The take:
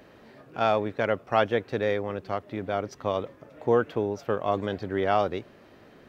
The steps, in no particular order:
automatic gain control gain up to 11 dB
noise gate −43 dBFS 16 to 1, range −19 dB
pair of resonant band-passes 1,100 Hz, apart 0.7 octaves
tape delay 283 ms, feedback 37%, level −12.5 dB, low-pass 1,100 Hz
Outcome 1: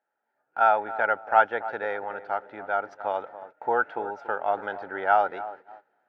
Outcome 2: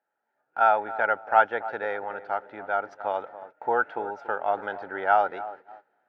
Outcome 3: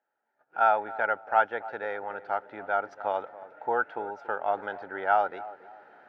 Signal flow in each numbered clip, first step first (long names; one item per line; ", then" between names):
pair of resonant band-passes, then tape delay, then automatic gain control, then noise gate
tape delay, then pair of resonant band-passes, then automatic gain control, then noise gate
automatic gain control, then tape delay, then noise gate, then pair of resonant band-passes